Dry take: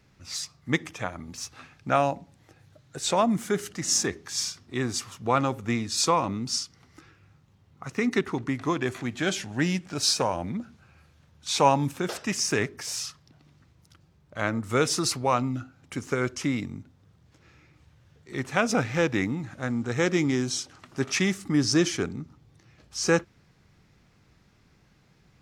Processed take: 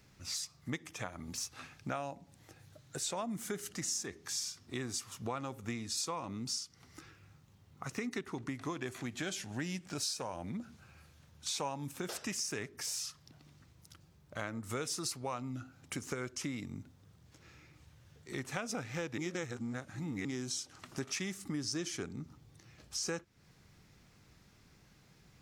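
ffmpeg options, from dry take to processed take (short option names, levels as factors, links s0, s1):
-filter_complex "[0:a]asplit=3[s0][s1][s2];[s0]atrim=end=19.182[s3];[s1]atrim=start=19.178:end=20.252,asetpts=PTS-STARTPTS,areverse[s4];[s2]atrim=start=20.248[s5];[s3][s4]acrossfade=d=0.004:c1=hsin:c2=hsin[s6];[s6][s5]acrossfade=d=0.004:c1=hsin:c2=hsin,highshelf=f=5700:g=9.5,acompressor=threshold=0.0178:ratio=4,volume=0.75"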